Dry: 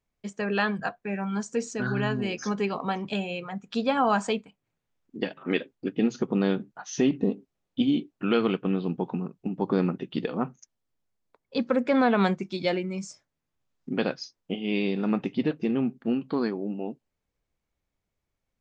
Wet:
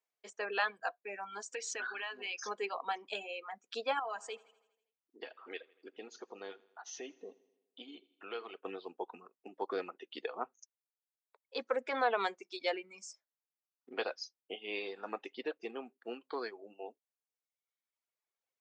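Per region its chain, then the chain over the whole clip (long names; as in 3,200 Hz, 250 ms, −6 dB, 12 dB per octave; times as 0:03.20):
0:01.52–0:02.40: parametric band 2,500 Hz +13.5 dB 2.6 octaves + downward compressor 12 to 1, threshold −28 dBFS
0:03.99–0:08.57: downward compressor 1.5 to 1, threshold −44 dBFS + repeating echo 81 ms, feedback 60%, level −12 dB
whole clip: notch filter 570 Hz, Q 12; reverb reduction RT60 1.3 s; high-pass filter 430 Hz 24 dB per octave; level −5 dB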